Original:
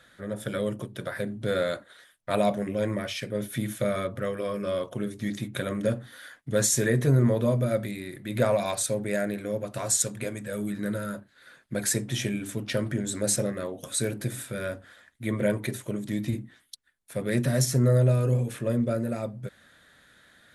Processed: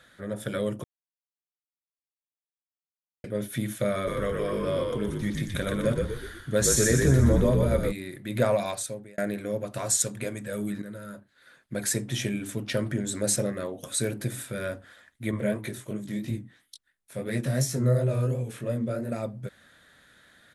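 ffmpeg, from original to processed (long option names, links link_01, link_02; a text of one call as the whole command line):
ffmpeg -i in.wav -filter_complex "[0:a]asplit=3[link_01][link_02][link_03];[link_01]afade=type=out:start_time=4.06:duration=0.02[link_04];[link_02]asplit=7[link_05][link_06][link_07][link_08][link_09][link_10][link_11];[link_06]adelay=122,afreqshift=-52,volume=-3dB[link_12];[link_07]adelay=244,afreqshift=-104,volume=-9.6dB[link_13];[link_08]adelay=366,afreqshift=-156,volume=-16.1dB[link_14];[link_09]adelay=488,afreqshift=-208,volume=-22.7dB[link_15];[link_10]adelay=610,afreqshift=-260,volume=-29.2dB[link_16];[link_11]adelay=732,afreqshift=-312,volume=-35.8dB[link_17];[link_05][link_12][link_13][link_14][link_15][link_16][link_17]amix=inputs=7:normalize=0,afade=type=in:start_time=4.06:duration=0.02,afade=type=out:start_time=7.91:duration=0.02[link_18];[link_03]afade=type=in:start_time=7.91:duration=0.02[link_19];[link_04][link_18][link_19]amix=inputs=3:normalize=0,asettb=1/sr,asplit=3[link_20][link_21][link_22];[link_20]atrim=end=15.314[link_23];[link_21]atrim=start=15.31:end=19.12,asetpts=PTS-STARTPTS,afade=type=in:duration=0.004:curve=qsin,afade=type=out:start_time=3.806:duration=0.004:curve=qsin,flanger=delay=18:depth=6.3:speed=2.9[link_24];[link_22]atrim=start=19.116[link_25];[link_23][link_24]acrossfade=duration=0.004:curve1=hsin:curve2=qsin[link_26];[link_26][link_25]acrossfade=duration=0.004:curve1=qsin:curve2=hsin,asplit=5[link_27][link_28][link_29][link_30][link_31];[link_27]atrim=end=0.84,asetpts=PTS-STARTPTS,afade=type=out:start_time=0.836:duration=0.004:curve=hsin[link_32];[link_28]atrim=start=0.84:end=3.24,asetpts=PTS-STARTPTS,volume=0[link_33];[link_29]atrim=start=3.24:end=9.18,asetpts=PTS-STARTPTS,afade=type=in:duration=0.004:curve=hsin,afade=type=out:start_time=5.31:duration=0.63[link_34];[link_30]atrim=start=9.18:end=10.82,asetpts=PTS-STARTPTS,afade=type=in:duration=0.004:curve=hsin,afade=type=out:start_time=1.636:duration=0.004:curve=hsin:silence=0.251189[link_35];[link_31]atrim=start=10.82,asetpts=PTS-STARTPTS,afade=type=in:duration=1.74:curve=qsin:silence=0.251189[link_36];[link_32][link_33][link_34][link_35][link_36]concat=n=5:v=0:a=1" out.wav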